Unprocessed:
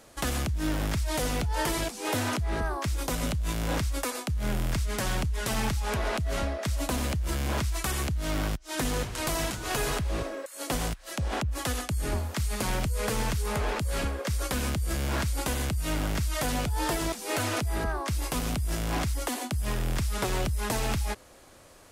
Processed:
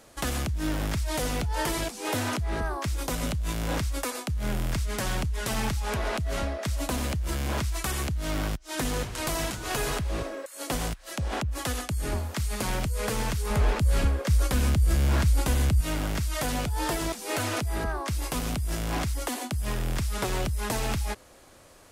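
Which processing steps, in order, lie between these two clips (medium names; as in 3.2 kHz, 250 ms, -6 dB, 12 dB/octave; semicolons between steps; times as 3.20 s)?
13.50–15.81 s: bass shelf 160 Hz +9.5 dB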